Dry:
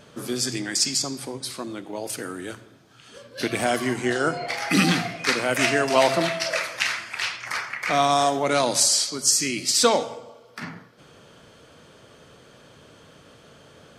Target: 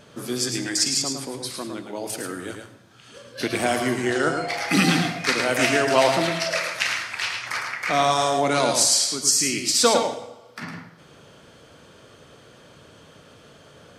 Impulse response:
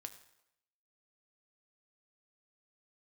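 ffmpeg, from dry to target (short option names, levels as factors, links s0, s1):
-filter_complex "[0:a]asplit=2[s0][s1];[1:a]atrim=start_sample=2205,adelay=108[s2];[s1][s2]afir=irnorm=-1:irlink=0,volume=0.944[s3];[s0][s3]amix=inputs=2:normalize=0"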